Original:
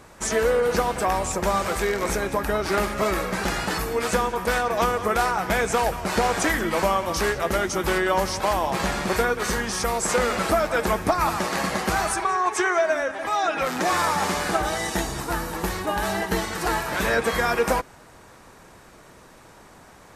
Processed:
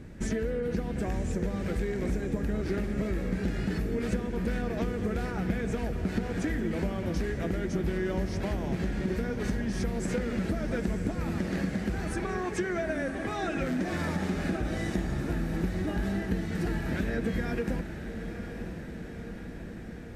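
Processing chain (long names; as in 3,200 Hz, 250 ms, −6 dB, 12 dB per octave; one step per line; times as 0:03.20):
drawn EQ curve 250 Hz 0 dB, 1,100 Hz −26 dB, 1,700 Hz −13 dB, 8,900 Hz −23 dB
downward compressor, threshold −36 dBFS, peak gain reduction 14.5 dB
on a send: feedback delay with all-pass diffusion 979 ms, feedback 65%, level −9.5 dB
on the sum: level +8.5 dB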